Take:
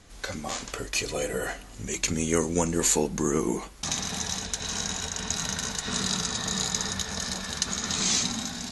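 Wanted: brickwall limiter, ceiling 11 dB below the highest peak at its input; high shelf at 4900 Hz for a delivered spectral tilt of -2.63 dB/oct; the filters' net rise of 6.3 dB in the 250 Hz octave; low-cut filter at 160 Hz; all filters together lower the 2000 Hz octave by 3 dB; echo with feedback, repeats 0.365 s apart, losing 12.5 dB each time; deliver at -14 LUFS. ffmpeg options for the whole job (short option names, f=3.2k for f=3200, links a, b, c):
-af "highpass=160,equalizer=f=250:t=o:g=9,equalizer=f=2k:t=o:g=-5,highshelf=f=4.9k:g=6,alimiter=limit=-17dB:level=0:latency=1,aecho=1:1:365|730|1095:0.237|0.0569|0.0137,volume=14dB"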